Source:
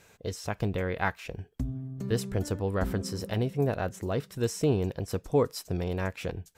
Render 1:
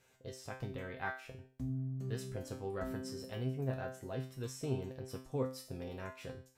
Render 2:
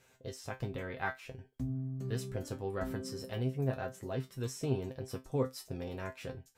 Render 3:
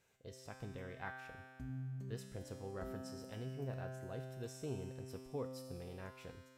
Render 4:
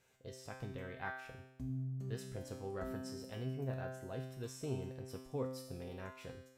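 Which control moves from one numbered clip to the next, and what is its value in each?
feedback comb, decay: 0.41 s, 0.18 s, 2.1 s, 0.88 s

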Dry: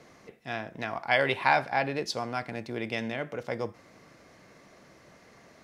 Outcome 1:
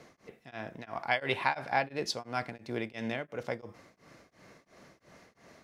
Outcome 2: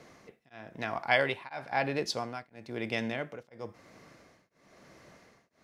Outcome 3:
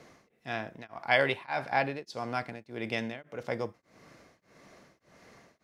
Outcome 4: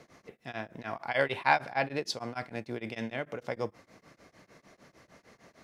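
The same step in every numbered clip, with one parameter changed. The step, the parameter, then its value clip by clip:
tremolo of two beating tones, nulls at: 2.9 Hz, 1 Hz, 1.7 Hz, 6.6 Hz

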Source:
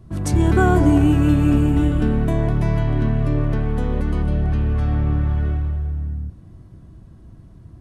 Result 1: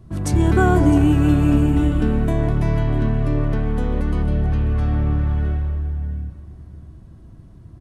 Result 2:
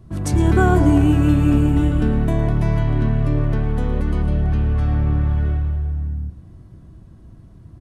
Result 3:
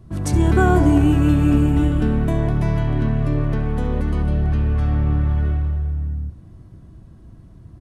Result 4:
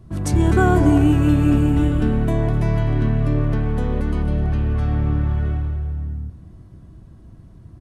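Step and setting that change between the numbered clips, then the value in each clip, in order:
feedback delay, time: 658 ms, 110 ms, 69 ms, 254 ms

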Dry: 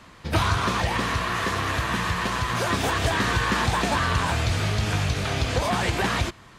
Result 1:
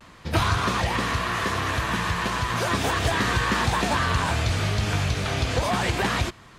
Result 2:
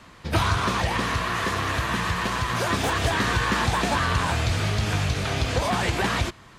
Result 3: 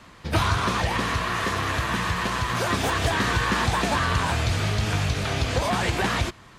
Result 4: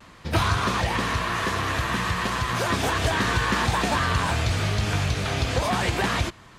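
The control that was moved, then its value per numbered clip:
vibrato, rate: 0.36 Hz, 8.8 Hz, 5.6 Hz, 0.57 Hz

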